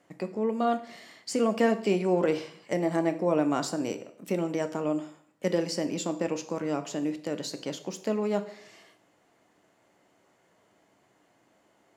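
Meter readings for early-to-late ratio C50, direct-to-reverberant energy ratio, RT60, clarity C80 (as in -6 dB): 13.5 dB, 8.5 dB, 0.60 s, 16.5 dB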